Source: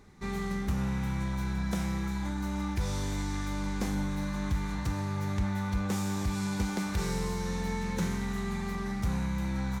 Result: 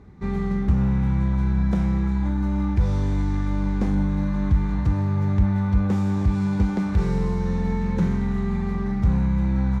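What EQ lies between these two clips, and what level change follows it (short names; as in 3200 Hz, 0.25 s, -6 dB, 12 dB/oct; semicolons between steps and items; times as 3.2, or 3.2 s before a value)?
HPF 50 Hz; LPF 3300 Hz 6 dB/oct; tilt -2.5 dB/oct; +3.5 dB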